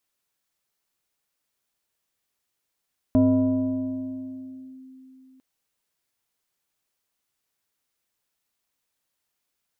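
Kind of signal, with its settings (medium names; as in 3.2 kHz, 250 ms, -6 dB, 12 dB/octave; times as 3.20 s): FM tone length 2.25 s, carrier 261 Hz, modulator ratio 1.39, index 0.7, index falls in 1.67 s linear, decay 3.53 s, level -13.5 dB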